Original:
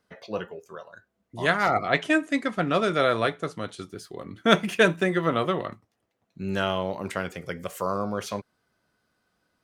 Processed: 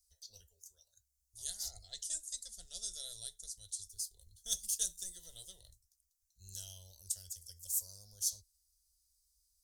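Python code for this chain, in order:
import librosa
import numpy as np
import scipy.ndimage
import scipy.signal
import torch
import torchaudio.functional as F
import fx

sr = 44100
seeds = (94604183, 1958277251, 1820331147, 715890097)

y = scipy.signal.sosfilt(scipy.signal.cheby2(4, 50, [130.0, 2500.0], 'bandstop', fs=sr, output='sos'), x)
y = y * 10.0 ** (9.5 / 20.0)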